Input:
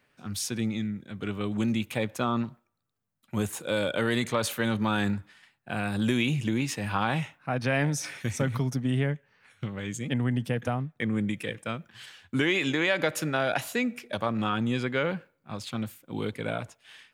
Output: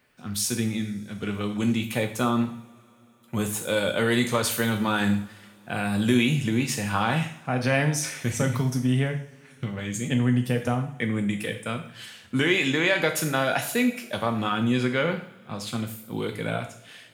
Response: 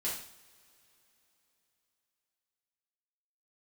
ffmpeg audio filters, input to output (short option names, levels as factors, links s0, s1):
-filter_complex "[0:a]asplit=2[s0][s1];[1:a]atrim=start_sample=2205,highshelf=f=6500:g=11.5[s2];[s1][s2]afir=irnorm=-1:irlink=0,volume=0.501[s3];[s0][s3]amix=inputs=2:normalize=0"